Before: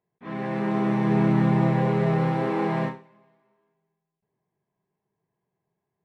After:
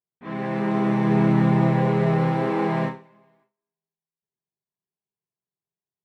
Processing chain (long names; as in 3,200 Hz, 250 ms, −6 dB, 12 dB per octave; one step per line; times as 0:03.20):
noise gate with hold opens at −55 dBFS
level +2 dB